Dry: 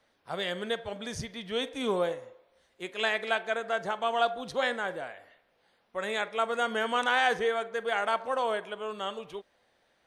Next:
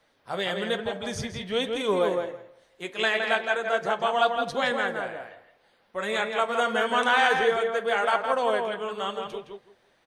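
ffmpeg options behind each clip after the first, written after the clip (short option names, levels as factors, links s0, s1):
-filter_complex "[0:a]flanger=delay=5.8:depth=5.1:regen=-45:speed=1.1:shape=triangular,asplit=2[s0][s1];[s1]adelay=165,lowpass=f=2700:p=1,volume=0.631,asplit=2[s2][s3];[s3]adelay=165,lowpass=f=2700:p=1,volume=0.18,asplit=2[s4][s5];[s5]adelay=165,lowpass=f=2700:p=1,volume=0.18[s6];[s2][s4][s6]amix=inputs=3:normalize=0[s7];[s0][s7]amix=inputs=2:normalize=0,volume=2.37"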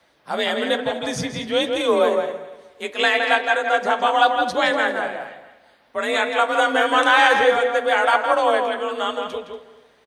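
-af "aecho=1:1:238|476|714:0.133|0.04|0.012,afreqshift=41,volume=2.11"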